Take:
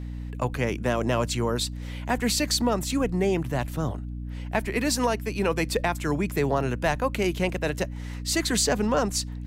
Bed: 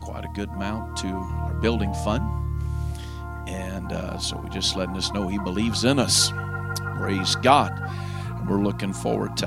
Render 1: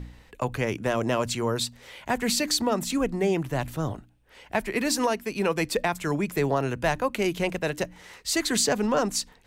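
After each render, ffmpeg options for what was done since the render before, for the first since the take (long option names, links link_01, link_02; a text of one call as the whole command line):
ffmpeg -i in.wav -af "bandreject=frequency=60:width_type=h:width=4,bandreject=frequency=120:width_type=h:width=4,bandreject=frequency=180:width_type=h:width=4,bandreject=frequency=240:width_type=h:width=4,bandreject=frequency=300:width_type=h:width=4" out.wav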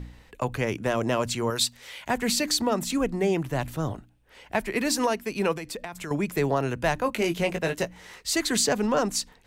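ffmpeg -i in.wav -filter_complex "[0:a]asettb=1/sr,asplit=3[link_01][link_02][link_03];[link_01]atrim=end=1.504[link_04];[link_02]atrim=start=1.5:end=2.08,asetpts=PTS-STARTPTS,afade=type=in:duration=0.004:curve=qsin,afade=type=out:start_time=0.576:duration=0.004:curve=qsin,tiltshelf=frequency=1100:gain=-5.5[link_05];[link_03]atrim=start=2.076[link_06];[link_04][link_05]acrossfade=duration=0.004:curve1=hsin:curve2=qsin[link_07];[link_07][link_06]acrossfade=duration=0.004:curve1=qsin:curve2=hsin,asettb=1/sr,asplit=3[link_08][link_09][link_10];[link_08]atrim=end=5.544[link_11];[link_09]atrim=start=5.54:end=6.11,asetpts=PTS-STARTPTS,afade=type=in:duration=0.004:curve=qsin,afade=type=out:start_time=0.566:duration=0.004:curve=qsin,acompressor=threshold=-32dB:ratio=6:attack=3.2:release=140:knee=1:detection=peak[link_12];[link_10]atrim=start=6.106[link_13];[link_11][link_12]acrossfade=duration=0.004:curve1=hsin:curve2=qsin[link_14];[link_14][link_13]acrossfade=duration=0.004:curve1=qsin:curve2=hsin,asettb=1/sr,asplit=3[link_15][link_16][link_17];[link_15]atrim=end=7.044[link_18];[link_16]atrim=start=7.04:end=8.21,asetpts=PTS-STARTPTS,afade=type=in:duration=0.004:curve=qsin,afade=type=out:start_time=1.166:duration=0.004:curve=qsin,asplit=2[link_19][link_20];[link_20]adelay=18,volume=-6dB[link_21];[link_19][link_21]amix=inputs=2:normalize=0,atrim=end_sample=51597[link_22];[link_17]atrim=start=8.206[link_23];[link_18][link_22]acrossfade=duration=0.004:curve1=hsin:curve2=qsin[link_24];[link_24][link_23]acrossfade=duration=0.004:curve1=qsin:curve2=hsin" out.wav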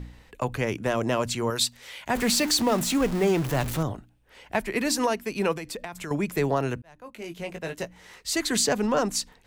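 ffmpeg -i in.wav -filter_complex "[0:a]asettb=1/sr,asplit=3[link_01][link_02][link_03];[link_01]atrim=end=2.154[link_04];[link_02]atrim=start=2.15:end=3.83,asetpts=PTS-STARTPTS,afade=type=in:duration=0.004:curve=qsin,afade=type=out:start_time=1.676:duration=0.004:curve=qsin,aeval=exprs='val(0)+0.5*0.0376*sgn(val(0))':channel_layout=same[link_05];[link_03]atrim=start=3.826[link_06];[link_04][link_05]acrossfade=duration=0.004:curve1=hsin:curve2=qsin[link_07];[link_07][link_06]acrossfade=duration=0.004:curve1=qsin:curve2=hsin,asplit=2[link_08][link_09];[link_08]atrim=end=6.82,asetpts=PTS-STARTPTS,afade=type=out:start_time=6.816:duration=0.004:curve=hsin[link_10];[link_09]atrim=start=6.82,asetpts=PTS-STARTPTS,afade=type=in:duration=1.76[link_11];[link_10][link_11]concat=n=2:v=0:a=1" out.wav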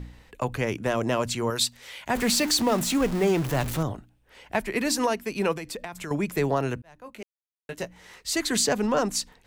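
ffmpeg -i in.wav -filter_complex "[0:a]asplit=3[link_01][link_02][link_03];[link_01]atrim=end=7.23,asetpts=PTS-STARTPTS,afade=type=out:start_time=7.226:duration=0.004:curve=hsin[link_04];[link_02]atrim=start=7.23:end=7.69,asetpts=PTS-STARTPTS,volume=0[link_05];[link_03]atrim=start=7.69,asetpts=PTS-STARTPTS,afade=type=in:duration=0.004:curve=hsin[link_06];[link_04][link_05][link_06]concat=n=3:v=0:a=1" out.wav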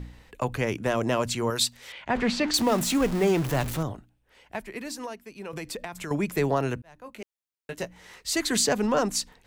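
ffmpeg -i in.wav -filter_complex "[0:a]asettb=1/sr,asplit=3[link_01][link_02][link_03];[link_01]atrim=end=1.924[link_04];[link_02]atrim=start=1.92:end=2.54,asetpts=PTS-STARTPTS,afade=type=in:duration=0.004:curve=qsin,afade=type=out:start_time=0.616:duration=0.004:curve=qsin,lowpass=3200[link_05];[link_03]atrim=start=2.536[link_06];[link_04][link_05]acrossfade=duration=0.004:curve1=hsin:curve2=qsin[link_07];[link_07][link_06]acrossfade=duration=0.004:curve1=qsin:curve2=hsin,asplit=2[link_08][link_09];[link_08]atrim=end=5.53,asetpts=PTS-STARTPTS,afade=type=out:start_time=3.53:duration=2:curve=qua:silence=0.211349[link_10];[link_09]atrim=start=5.53,asetpts=PTS-STARTPTS,afade=type=in:duration=0.004:curve=hsin:silence=0.211349[link_11];[link_10][link_11]concat=n=2:v=0:a=1" out.wav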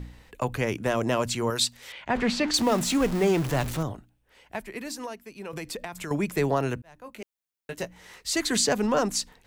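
ffmpeg -i in.wav -filter_complex "[0:a]acrossover=split=9600[link_01][link_02];[link_02]acompressor=threshold=-45dB:ratio=4:attack=1:release=60[link_03];[link_01][link_03]amix=inputs=2:normalize=0,highshelf=frequency=11000:gain=4.5" out.wav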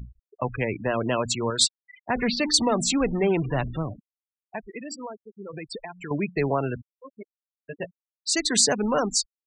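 ffmpeg -i in.wav -af "afftfilt=real='re*gte(hypot(re,im),0.0398)':imag='im*gte(hypot(re,im),0.0398)':win_size=1024:overlap=0.75,highshelf=frequency=3400:gain=7" out.wav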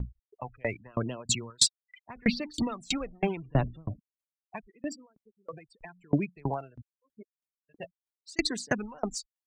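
ffmpeg -i in.wav -af "aphaser=in_gain=1:out_gain=1:delay=1.7:decay=0.57:speed=0.82:type=triangular,aeval=exprs='val(0)*pow(10,-33*if(lt(mod(3.1*n/s,1),2*abs(3.1)/1000),1-mod(3.1*n/s,1)/(2*abs(3.1)/1000),(mod(3.1*n/s,1)-2*abs(3.1)/1000)/(1-2*abs(3.1)/1000))/20)':channel_layout=same" out.wav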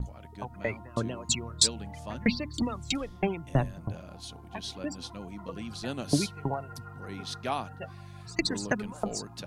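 ffmpeg -i in.wav -i bed.wav -filter_complex "[1:a]volume=-15.5dB[link_01];[0:a][link_01]amix=inputs=2:normalize=0" out.wav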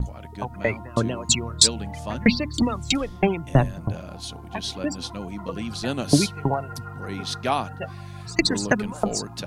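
ffmpeg -i in.wav -af "volume=8dB,alimiter=limit=-1dB:level=0:latency=1" out.wav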